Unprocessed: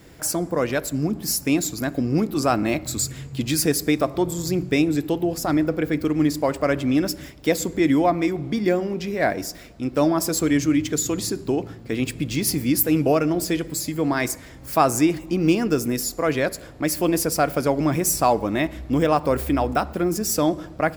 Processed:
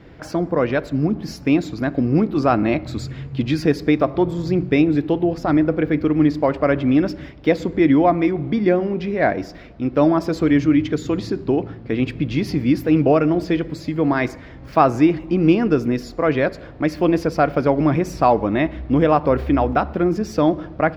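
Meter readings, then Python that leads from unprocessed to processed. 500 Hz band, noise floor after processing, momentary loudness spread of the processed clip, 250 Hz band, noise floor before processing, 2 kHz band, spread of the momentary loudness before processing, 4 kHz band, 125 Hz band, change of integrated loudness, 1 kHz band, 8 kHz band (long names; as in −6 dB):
+3.5 dB, −39 dBFS, 8 LU, +4.0 dB, −42 dBFS, +2.0 dB, 6 LU, −4.5 dB, +4.5 dB, +3.0 dB, +3.5 dB, below −15 dB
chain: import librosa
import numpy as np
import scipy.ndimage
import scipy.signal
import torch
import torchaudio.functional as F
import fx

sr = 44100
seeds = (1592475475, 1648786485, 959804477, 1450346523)

y = fx.air_absorb(x, sr, metres=280.0)
y = y * librosa.db_to_amplitude(4.5)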